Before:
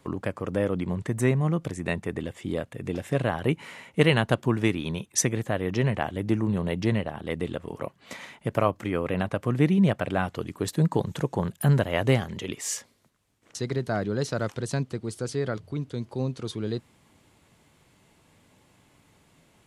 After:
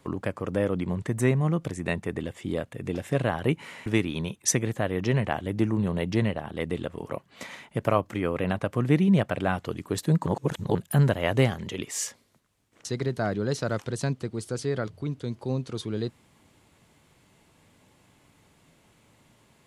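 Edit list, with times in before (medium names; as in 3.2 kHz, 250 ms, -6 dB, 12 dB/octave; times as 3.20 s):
3.86–4.56 s: delete
10.96–11.45 s: reverse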